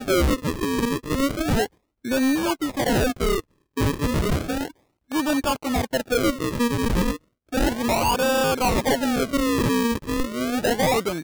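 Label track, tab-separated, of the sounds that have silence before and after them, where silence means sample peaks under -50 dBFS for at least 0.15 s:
2.040000	3.410000	sound
3.770000	4.710000	sound
5.100000	7.180000	sound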